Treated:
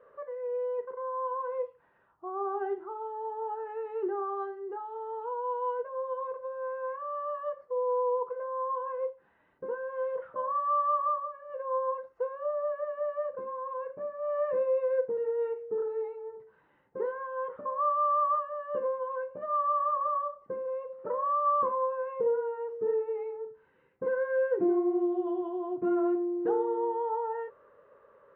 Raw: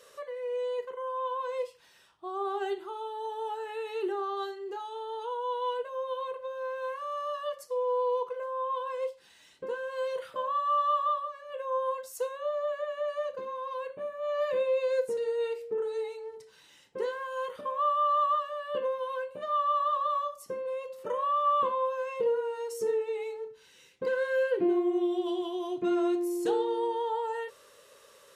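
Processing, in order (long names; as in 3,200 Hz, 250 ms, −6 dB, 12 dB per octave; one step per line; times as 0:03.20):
low-pass filter 1,500 Hz 24 dB per octave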